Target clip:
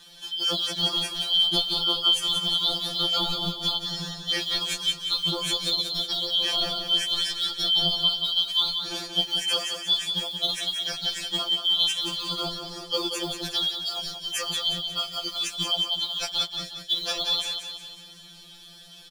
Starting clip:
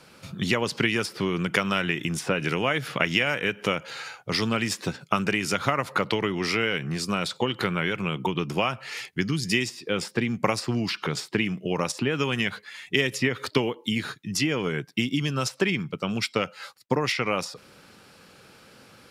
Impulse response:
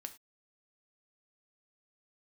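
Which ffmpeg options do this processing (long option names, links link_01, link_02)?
-filter_complex "[0:a]afftfilt=real='real(if(lt(b,272),68*(eq(floor(b/68),0)*1+eq(floor(b/68),1)*3+eq(floor(b/68),2)*0+eq(floor(b/68),3)*2)+mod(b,68),b),0)':imag='imag(if(lt(b,272),68*(eq(floor(b/68),0)*1+eq(floor(b/68),1)*3+eq(floor(b/68),2)*0+eq(floor(b/68),3)*2)+mod(b,68),b),0)':win_size=2048:overlap=0.75,equalizer=frequency=930:width=1.4:gain=-11,bandreject=frequency=2100:width=6,asplit=2[link_01][link_02];[link_02]acompressor=threshold=-35dB:ratio=12,volume=0dB[link_03];[link_01][link_03]amix=inputs=2:normalize=0,acrusher=bits=6:mode=log:mix=0:aa=0.000001,asplit=2[link_04][link_05];[link_05]aecho=0:1:181|362|543|724|905|1086:0.447|0.219|0.107|0.0526|0.0258|0.0126[link_06];[link_04][link_06]amix=inputs=2:normalize=0,afftfilt=real='re*2.83*eq(mod(b,8),0)':imag='im*2.83*eq(mod(b,8),0)':win_size=2048:overlap=0.75"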